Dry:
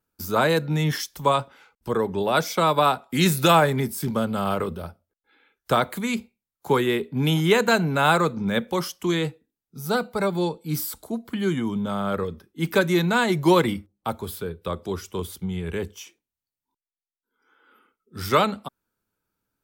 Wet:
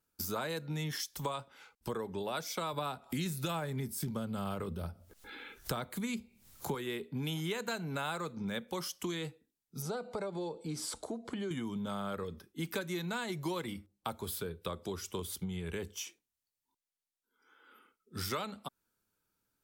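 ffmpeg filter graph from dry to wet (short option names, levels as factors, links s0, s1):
-filter_complex "[0:a]asettb=1/sr,asplit=3[s0][s1][s2];[s0]atrim=end=2.734[s3];[s1]atrim=start=2.73:end=6.75,asetpts=PTS-STARTPTS,afade=t=in:d=0.004:c=qsin,afade=t=out:st=4.016:d=0.004:c=qsin,lowshelf=f=240:g=9.5,acompressor=mode=upward:threshold=0.0282:ratio=2.5:attack=3.2:release=140:knee=2.83:detection=peak[s4];[s2]atrim=start=6.746[s5];[s3][s4]acrossfade=d=0.004:c1=hsin:c2=qsin[s6];[s6][s5]acrossfade=d=0.004:c1=qsin:c2=hsin,asettb=1/sr,asplit=3[s7][s8][s9];[s7]atrim=end=9.824[s10];[s8]atrim=start=9.82:end=11.51,asetpts=PTS-STARTPTS,afade=t=in:d=0.004:c=qsin,afade=t=out:st=1.686:d=0.004:c=qsin,lowpass=f=8900:w=0.5412,lowpass=f=8900:w=1.3066,equalizer=f=530:t=o:w=1.9:g=10,acompressor=threshold=0.02:ratio=2:attack=3.2:release=140:knee=1:detection=peak[s11];[s9]atrim=start=11.506[s12];[s10][s11]acrossfade=d=0.004:c1=hsin:c2=qsin[s13];[s13][s12]acrossfade=d=0.004:c1=qsin:c2=hsin,equalizer=f=8100:t=o:w=2.8:g=6,acompressor=threshold=0.0282:ratio=6,volume=0.631"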